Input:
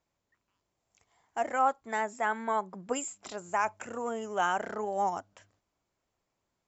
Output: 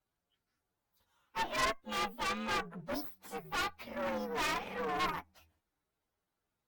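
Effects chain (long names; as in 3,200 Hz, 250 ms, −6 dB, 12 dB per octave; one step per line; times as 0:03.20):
partials spread apart or drawn together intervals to 125%
harmonic generator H 6 −11 dB, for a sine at −16 dBFS
asymmetric clip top −30 dBFS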